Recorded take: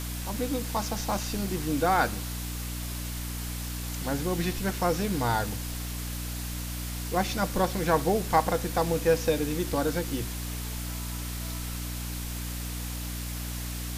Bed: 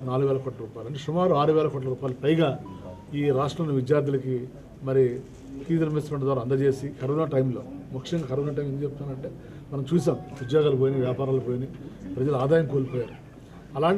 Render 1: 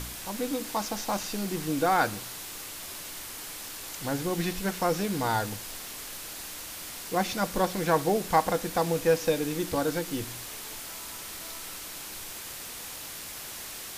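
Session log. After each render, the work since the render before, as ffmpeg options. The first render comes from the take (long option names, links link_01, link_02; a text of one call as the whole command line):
ffmpeg -i in.wav -af "bandreject=frequency=60:width_type=h:width=4,bandreject=frequency=120:width_type=h:width=4,bandreject=frequency=180:width_type=h:width=4,bandreject=frequency=240:width_type=h:width=4,bandreject=frequency=300:width_type=h:width=4" out.wav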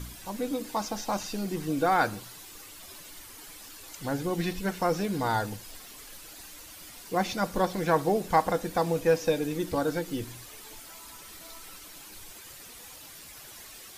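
ffmpeg -i in.wav -af "afftdn=noise_reduction=10:noise_floor=-41" out.wav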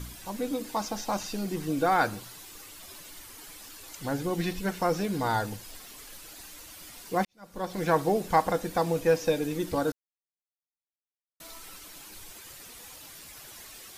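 ffmpeg -i in.wav -filter_complex "[0:a]asplit=4[link_01][link_02][link_03][link_04];[link_01]atrim=end=7.25,asetpts=PTS-STARTPTS,afade=type=out:start_time=7.246:duration=0.004:curve=hsin[link_05];[link_02]atrim=start=7.25:end=9.92,asetpts=PTS-STARTPTS,afade=type=in:duration=0.58:curve=qua,afade=type=out:start_time=2.666:duration=0.004:curve=hsin[link_06];[link_03]atrim=start=9.92:end=11.4,asetpts=PTS-STARTPTS,volume=0[link_07];[link_04]atrim=start=11.4,asetpts=PTS-STARTPTS,afade=type=in:duration=0.004:curve=hsin[link_08];[link_05][link_06][link_07][link_08]concat=n=4:v=0:a=1" out.wav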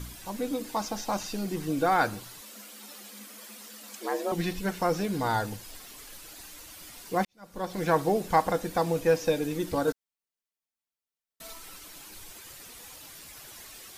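ffmpeg -i in.wav -filter_complex "[0:a]asettb=1/sr,asplit=3[link_01][link_02][link_03];[link_01]atrim=end=2.414[link_04];[link_02]atrim=start=2.41:end=4.32,asetpts=PTS-STARTPTS,afade=type=in:duration=0.004:curve=qsin,afade=type=out:start_time=1.906:duration=0.004:curve=qsin,afreqshift=200[link_05];[link_03]atrim=start=4.316[link_06];[link_04][link_05]acrossfade=duration=0.004:curve1=hsin:curve2=qsin[link_07];[link_07][link_06]acrossfade=duration=0.004:curve1=qsin:curve2=hsin,asettb=1/sr,asplit=3[link_08][link_09][link_10];[link_08]atrim=end=9.874[link_11];[link_09]atrim=start=9.87:end=11.53,asetpts=PTS-STARTPTS,afade=type=in:duration=0.004:curve=qsin,afade=type=out:start_time=1.656:duration=0.004:curve=qsin,aecho=1:1:4.5:0.76,atrim=end_sample=73206[link_12];[link_10]atrim=start=11.526[link_13];[link_11][link_12]acrossfade=duration=0.004:curve1=hsin:curve2=qsin[link_14];[link_14][link_13]acrossfade=duration=0.004:curve1=qsin:curve2=hsin" out.wav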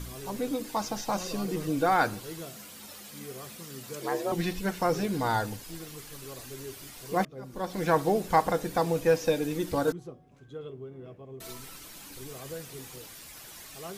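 ffmpeg -i in.wav -i bed.wav -filter_complex "[1:a]volume=-20dB[link_01];[0:a][link_01]amix=inputs=2:normalize=0" out.wav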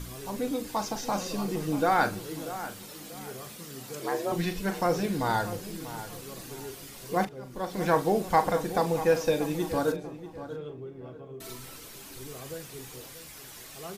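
ffmpeg -i in.wav -filter_complex "[0:a]asplit=2[link_01][link_02];[link_02]adelay=40,volume=-11dB[link_03];[link_01][link_03]amix=inputs=2:normalize=0,asplit=2[link_04][link_05];[link_05]adelay=638,lowpass=frequency=2400:poles=1,volume=-12.5dB,asplit=2[link_06][link_07];[link_07]adelay=638,lowpass=frequency=2400:poles=1,volume=0.33,asplit=2[link_08][link_09];[link_09]adelay=638,lowpass=frequency=2400:poles=1,volume=0.33[link_10];[link_04][link_06][link_08][link_10]amix=inputs=4:normalize=0" out.wav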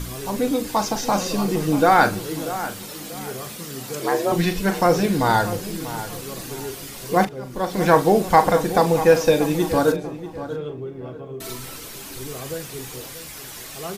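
ffmpeg -i in.wav -af "volume=9dB,alimiter=limit=-2dB:level=0:latency=1" out.wav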